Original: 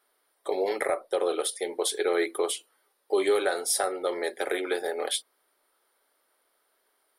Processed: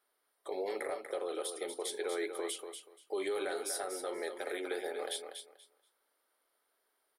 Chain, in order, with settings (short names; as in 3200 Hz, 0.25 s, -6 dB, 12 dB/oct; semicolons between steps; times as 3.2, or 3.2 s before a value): limiter -20 dBFS, peak gain reduction 6.5 dB; feedback echo 0.24 s, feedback 20%, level -7.5 dB; gain -8 dB